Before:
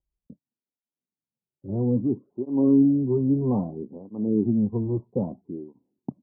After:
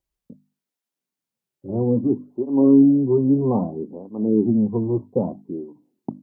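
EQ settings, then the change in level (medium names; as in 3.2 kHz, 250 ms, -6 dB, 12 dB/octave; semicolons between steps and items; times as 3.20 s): bass shelf 170 Hz -9 dB; hum notches 50/100/150/200/250/300 Hz; +7.5 dB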